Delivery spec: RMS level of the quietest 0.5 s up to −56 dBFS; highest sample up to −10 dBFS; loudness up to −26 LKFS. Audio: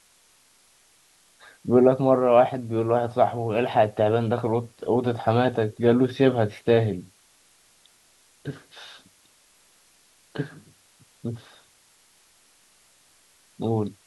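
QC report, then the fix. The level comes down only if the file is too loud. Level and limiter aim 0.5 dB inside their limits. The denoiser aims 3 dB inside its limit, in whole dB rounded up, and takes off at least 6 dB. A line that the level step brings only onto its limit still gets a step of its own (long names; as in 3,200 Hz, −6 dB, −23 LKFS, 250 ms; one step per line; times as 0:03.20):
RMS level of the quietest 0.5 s −60 dBFS: in spec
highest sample −4.5 dBFS: out of spec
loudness −22.5 LKFS: out of spec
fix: level −4 dB
brickwall limiter −10.5 dBFS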